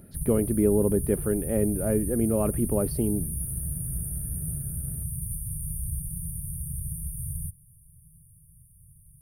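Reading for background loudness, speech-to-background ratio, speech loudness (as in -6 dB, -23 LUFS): -32.5 LUFS, 6.5 dB, -26.0 LUFS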